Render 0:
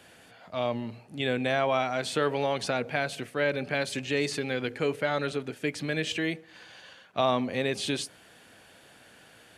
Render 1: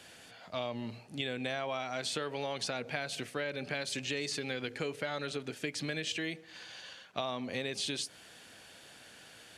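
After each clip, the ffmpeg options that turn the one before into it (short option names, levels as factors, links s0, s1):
-af "equalizer=f=5400:t=o:w=2:g=7.5,acompressor=threshold=0.0316:ratio=6,volume=0.75"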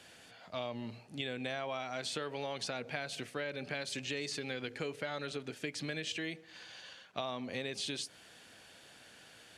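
-af "highshelf=f=9800:g=-3.5,volume=0.75"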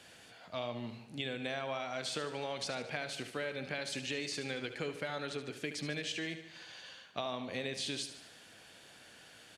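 -af "aecho=1:1:74|148|222|296|370|444:0.282|0.161|0.0916|0.0522|0.0298|0.017"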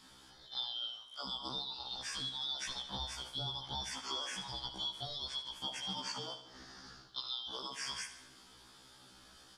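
-af "afftfilt=real='real(if(lt(b,272),68*(eq(floor(b/68),0)*1+eq(floor(b/68),1)*3+eq(floor(b/68),2)*0+eq(floor(b/68),3)*2)+mod(b,68),b),0)':imag='imag(if(lt(b,272),68*(eq(floor(b/68),0)*1+eq(floor(b/68),1)*3+eq(floor(b/68),2)*0+eq(floor(b/68),3)*2)+mod(b,68),b),0)':win_size=2048:overlap=0.75,afftfilt=real='re*1.73*eq(mod(b,3),0)':imag='im*1.73*eq(mod(b,3),0)':win_size=2048:overlap=0.75"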